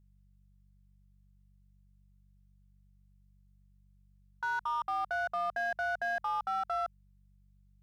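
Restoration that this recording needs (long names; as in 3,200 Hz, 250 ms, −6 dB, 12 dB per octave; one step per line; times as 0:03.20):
clipped peaks rebuilt −28 dBFS
hum removal 48.1 Hz, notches 4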